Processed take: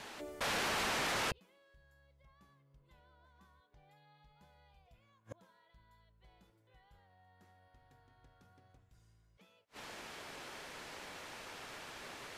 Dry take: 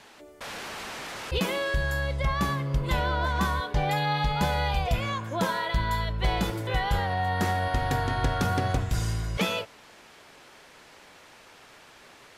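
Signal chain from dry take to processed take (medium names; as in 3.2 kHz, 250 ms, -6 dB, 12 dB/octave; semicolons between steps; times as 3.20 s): inverted gate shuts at -26 dBFS, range -42 dB; trim +2.5 dB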